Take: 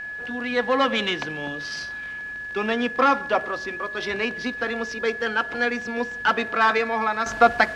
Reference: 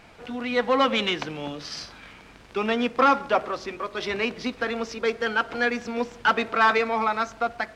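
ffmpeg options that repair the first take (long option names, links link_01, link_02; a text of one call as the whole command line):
ffmpeg -i in.wav -af "bandreject=frequency=1700:width=30,asetnsamples=nb_out_samples=441:pad=0,asendcmd='7.26 volume volume -10.5dB',volume=0dB" out.wav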